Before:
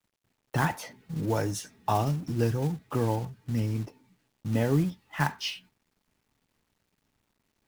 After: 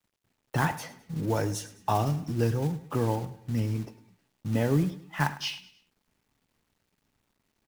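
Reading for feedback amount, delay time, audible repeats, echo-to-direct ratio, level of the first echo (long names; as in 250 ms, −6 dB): 40%, 104 ms, 3, −15.5 dB, −16.5 dB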